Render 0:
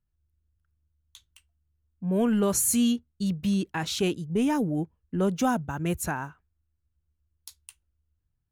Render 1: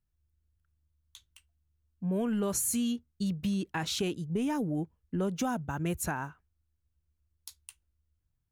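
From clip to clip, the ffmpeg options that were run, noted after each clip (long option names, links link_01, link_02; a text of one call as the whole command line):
ffmpeg -i in.wav -af "acompressor=threshold=-26dB:ratio=6,volume=-1.5dB" out.wav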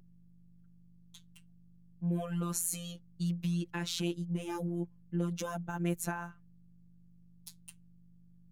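ffmpeg -i in.wav -af "aeval=exprs='val(0)+0.00251*(sin(2*PI*50*n/s)+sin(2*PI*2*50*n/s)/2+sin(2*PI*3*50*n/s)/3+sin(2*PI*4*50*n/s)/4+sin(2*PI*5*50*n/s)/5)':channel_layout=same,afftfilt=real='hypot(re,im)*cos(PI*b)':imag='0':win_size=1024:overlap=0.75" out.wav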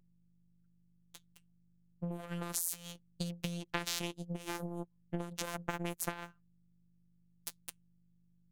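ffmpeg -i in.wav -af "acompressor=threshold=-37dB:ratio=8,aeval=exprs='0.0841*(cos(1*acos(clip(val(0)/0.0841,-1,1)))-cos(1*PI/2))+0.0106*(cos(7*acos(clip(val(0)/0.0841,-1,1)))-cos(7*PI/2))':channel_layout=same,volume=8.5dB" out.wav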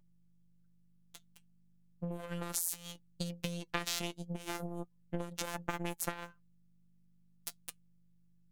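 ffmpeg -i in.wav -af "flanger=delay=3.3:depth=1.3:regen=69:speed=0.35:shape=triangular,volume=5dB" out.wav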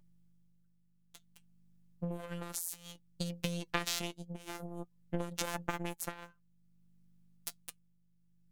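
ffmpeg -i in.wav -af "tremolo=f=0.56:d=0.55,volume=2.5dB" out.wav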